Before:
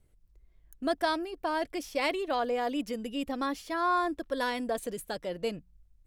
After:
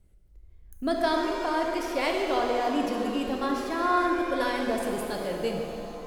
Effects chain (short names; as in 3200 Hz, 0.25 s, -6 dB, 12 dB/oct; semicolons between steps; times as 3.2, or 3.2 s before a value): low shelf 270 Hz +5.5 dB; tape echo 74 ms, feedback 85%, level -8.5 dB, low-pass 2400 Hz; shimmer reverb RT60 2.3 s, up +7 st, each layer -8 dB, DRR 2.5 dB